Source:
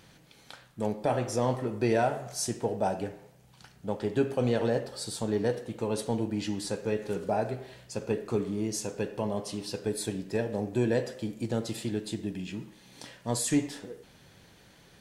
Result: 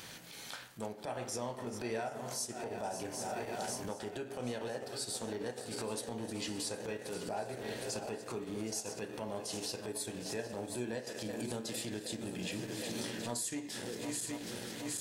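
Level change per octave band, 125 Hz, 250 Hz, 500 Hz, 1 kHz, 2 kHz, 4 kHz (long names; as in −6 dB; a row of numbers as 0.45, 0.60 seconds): −12.0, −9.5, −9.5, −7.5, −4.0, −1.0 decibels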